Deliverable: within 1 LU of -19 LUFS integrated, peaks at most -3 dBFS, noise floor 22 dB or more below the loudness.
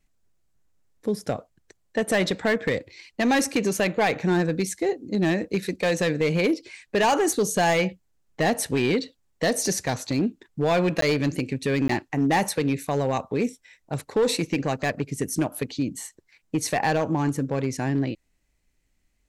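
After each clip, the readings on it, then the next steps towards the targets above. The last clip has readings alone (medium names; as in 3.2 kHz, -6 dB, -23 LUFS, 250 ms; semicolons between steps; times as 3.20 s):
clipped samples 1.3%; clipping level -16.0 dBFS; dropouts 2; longest dropout 13 ms; loudness -25.0 LUFS; peak level -16.0 dBFS; loudness target -19.0 LUFS
-> clip repair -16 dBFS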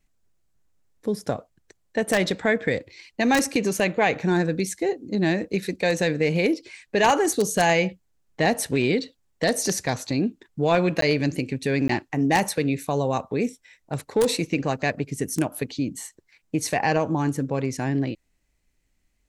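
clipped samples 0.0%; dropouts 2; longest dropout 13 ms
-> interpolate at 11.01/11.88 s, 13 ms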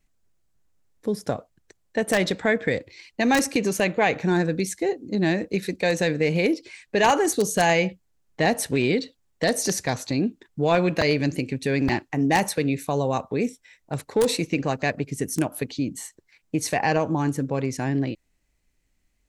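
dropouts 0; loudness -24.0 LUFS; peak level -7.0 dBFS; loudness target -19.0 LUFS
-> trim +5 dB; peak limiter -3 dBFS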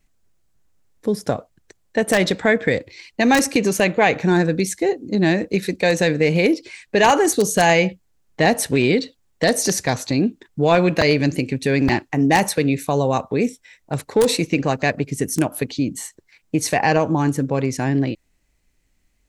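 loudness -19.5 LUFS; peak level -3.0 dBFS; noise floor -65 dBFS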